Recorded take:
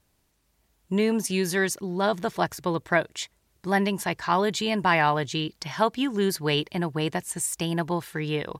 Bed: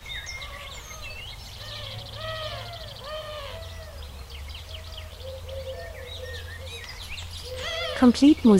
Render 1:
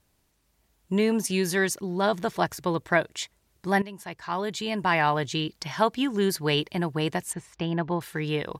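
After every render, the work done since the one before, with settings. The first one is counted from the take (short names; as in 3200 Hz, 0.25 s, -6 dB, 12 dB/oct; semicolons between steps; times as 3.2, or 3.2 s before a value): 3.82–5.28 fade in, from -16 dB; 7.33–8.01 air absorption 260 m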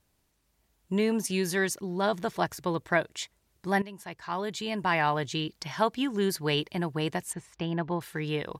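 gain -3 dB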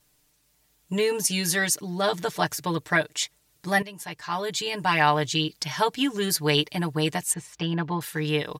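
high shelf 2500 Hz +9 dB; comb 6.7 ms, depth 82%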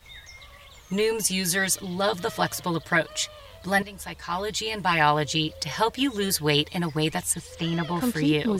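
add bed -9.5 dB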